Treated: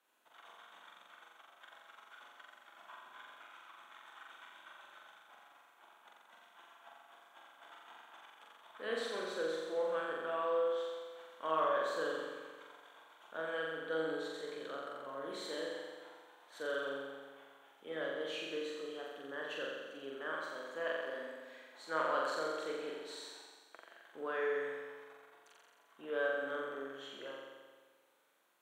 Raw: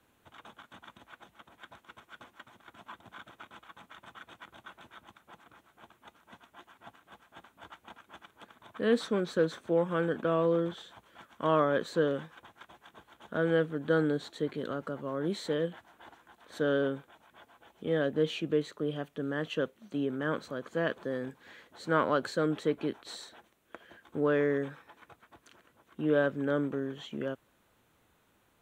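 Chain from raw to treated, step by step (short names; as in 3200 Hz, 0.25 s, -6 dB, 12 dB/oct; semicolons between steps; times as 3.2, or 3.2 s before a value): HPF 580 Hz 12 dB/oct; flutter echo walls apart 7.5 m, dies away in 1.5 s; gain -8 dB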